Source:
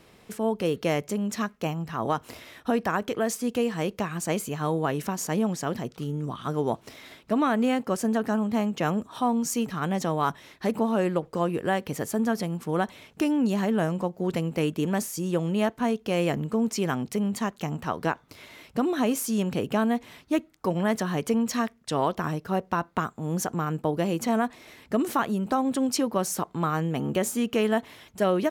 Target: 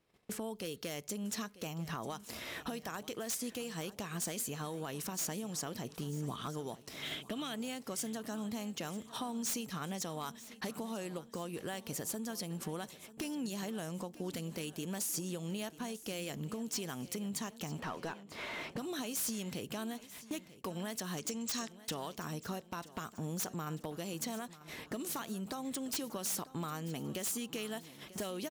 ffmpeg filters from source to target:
-filter_complex "[0:a]asettb=1/sr,asplit=3[s0][s1][s2];[s0]atrim=end=21.174[s3];[s1]atrim=start=21.17:end=21.76,asetpts=PTS-STARTPTS,afade=t=in:d=0.004:c=qsin,afade=t=out:st=0.586:d=0.004:c=qsin,lowpass=f=7100:t=q:w=3.2[s4];[s2]atrim=start=21.756[s5];[s3][s4]acrossfade=d=0.004:c1=hsin:c2=qsin[s6];[s6][s5]acrossfade=d=0.004:c1=qsin:c2=hsin,acrossover=split=3600[s7][s8];[s7]acompressor=threshold=0.0126:ratio=16[s9];[s9][s8]amix=inputs=2:normalize=0,agate=range=0.0447:threshold=0.00282:ratio=16:detection=peak,acontrast=30,aeval=exprs='0.0562*(abs(mod(val(0)/0.0562+3,4)-2)-1)':c=same,alimiter=level_in=1.88:limit=0.0631:level=0:latency=1:release=263,volume=0.531,asettb=1/sr,asplit=3[s10][s11][s12];[s10]atrim=end=7.024[s13];[s11]atrim=start=7.02:end=7.54,asetpts=PTS-STARTPTS,afade=t=in:d=0.004:c=qsin,afade=t=out:st=0.516:d=0.004:c=qsin,equalizer=f=1000:t=o:w=0.33:g=-6,equalizer=f=3150:t=o:w=0.33:g=12,equalizer=f=5000:t=o:w=0.33:g=-4[s14];[s12]atrim=start=7.536[s15];[s13][s14]acrossfade=d=0.004:c1=hsin:c2=qsin[s16];[s16][s15]acrossfade=d=0.004:c1=qsin:c2=hsin,asplit=2[s17][s18];[s18]aecho=0:1:942|1884|2826|3768:0.141|0.072|0.0367|0.0187[s19];[s17][s19]amix=inputs=2:normalize=0,asettb=1/sr,asplit=3[s20][s21][s22];[s20]atrim=end=17.794[s23];[s21]atrim=start=17.79:end=18.78,asetpts=PTS-STARTPTS,afade=t=in:d=0.004:c=qsin,afade=t=out:st=0.986:d=0.004:c=qsin,asplit=2[s24][s25];[s25]highpass=f=720:p=1,volume=7.08,asoftclip=type=tanh:threshold=0.0376[s26];[s24][s26]amix=inputs=2:normalize=0,lowpass=f=1400:p=1,volume=0.501[s27];[s22]atrim=start=18.776[s28];[s23][s27]acrossfade=d=0.004:c1=hsin:c2=qsin[s29];[s29][s28]acrossfade=d=0.004:c1=qsin:c2=hsin,volume=0.891"

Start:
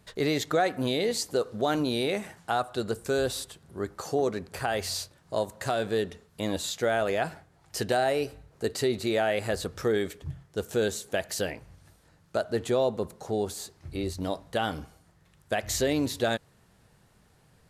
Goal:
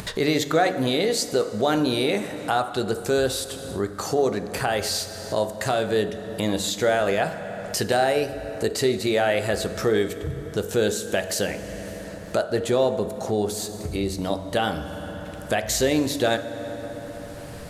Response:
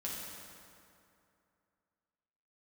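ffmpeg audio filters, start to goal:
-filter_complex "[0:a]bandreject=f=46.66:t=h:w=4,bandreject=f=93.32:t=h:w=4,bandreject=f=139.98:t=h:w=4,bandreject=f=186.64:t=h:w=4,bandreject=f=233.3:t=h:w=4,bandreject=f=279.96:t=h:w=4,bandreject=f=326.62:t=h:w=4,bandreject=f=373.28:t=h:w=4,bandreject=f=419.94:t=h:w=4,bandreject=f=466.6:t=h:w=4,bandreject=f=513.26:t=h:w=4,bandreject=f=559.92:t=h:w=4,bandreject=f=606.58:t=h:w=4,bandreject=f=653.24:t=h:w=4,bandreject=f=699.9:t=h:w=4,bandreject=f=746.56:t=h:w=4,bandreject=f=793.22:t=h:w=4,bandreject=f=839.88:t=h:w=4,bandreject=f=886.54:t=h:w=4,bandreject=f=933.2:t=h:w=4,bandreject=f=979.86:t=h:w=4,bandreject=f=1026.52:t=h:w=4,bandreject=f=1073.18:t=h:w=4,bandreject=f=1119.84:t=h:w=4,bandreject=f=1166.5:t=h:w=4,bandreject=f=1213.16:t=h:w=4,bandreject=f=1259.82:t=h:w=4,bandreject=f=1306.48:t=h:w=4,bandreject=f=1353.14:t=h:w=4,bandreject=f=1399.8:t=h:w=4,bandreject=f=1446.46:t=h:w=4,bandreject=f=1493.12:t=h:w=4,bandreject=f=1539.78:t=h:w=4,bandreject=f=1586.44:t=h:w=4,bandreject=f=1633.1:t=h:w=4,bandreject=f=1679.76:t=h:w=4,asplit=2[s0][s1];[1:a]atrim=start_sample=2205[s2];[s1][s2]afir=irnorm=-1:irlink=0,volume=0.282[s3];[s0][s3]amix=inputs=2:normalize=0,acompressor=mode=upward:threshold=0.0501:ratio=2.5,volume=1.58"

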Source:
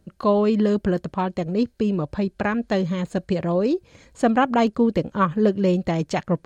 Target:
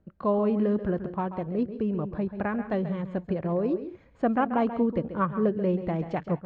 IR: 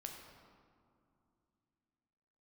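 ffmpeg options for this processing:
-filter_complex "[0:a]lowpass=1800,asplit=2[s0][s1];[1:a]atrim=start_sample=2205,atrim=end_sample=3528,adelay=135[s2];[s1][s2]afir=irnorm=-1:irlink=0,volume=0.501[s3];[s0][s3]amix=inputs=2:normalize=0,volume=0.501"

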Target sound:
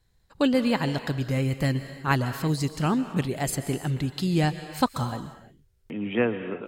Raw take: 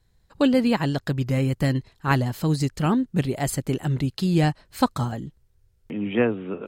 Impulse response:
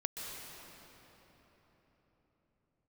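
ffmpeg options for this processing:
-filter_complex "[0:a]asplit=2[s0][s1];[1:a]atrim=start_sample=2205,afade=t=out:st=0.41:d=0.01,atrim=end_sample=18522,lowshelf=f=440:g=-11[s2];[s1][s2]afir=irnorm=-1:irlink=0,volume=0.794[s3];[s0][s3]amix=inputs=2:normalize=0,volume=0.562"

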